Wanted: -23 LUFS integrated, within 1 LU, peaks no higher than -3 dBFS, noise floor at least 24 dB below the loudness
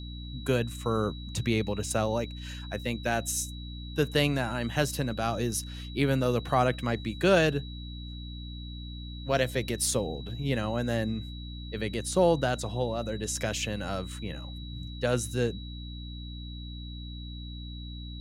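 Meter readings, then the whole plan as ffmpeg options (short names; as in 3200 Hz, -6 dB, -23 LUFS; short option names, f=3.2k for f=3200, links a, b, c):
hum 60 Hz; harmonics up to 300 Hz; hum level -37 dBFS; steady tone 3900 Hz; tone level -46 dBFS; loudness -29.5 LUFS; peak -11.0 dBFS; loudness target -23.0 LUFS
-> -af "bandreject=f=60:t=h:w=4,bandreject=f=120:t=h:w=4,bandreject=f=180:t=h:w=4,bandreject=f=240:t=h:w=4,bandreject=f=300:t=h:w=4"
-af "bandreject=f=3.9k:w=30"
-af "volume=6.5dB"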